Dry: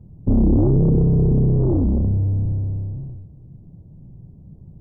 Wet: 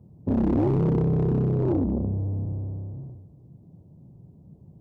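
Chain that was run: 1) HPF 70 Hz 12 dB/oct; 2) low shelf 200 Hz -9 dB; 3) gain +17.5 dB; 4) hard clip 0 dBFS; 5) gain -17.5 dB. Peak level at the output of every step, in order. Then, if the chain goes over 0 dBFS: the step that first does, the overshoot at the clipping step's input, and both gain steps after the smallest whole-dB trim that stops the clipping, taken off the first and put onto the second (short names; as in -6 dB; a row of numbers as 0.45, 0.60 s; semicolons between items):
-8.0, -12.5, +5.0, 0.0, -17.5 dBFS; step 3, 5.0 dB; step 3 +12.5 dB, step 5 -12.5 dB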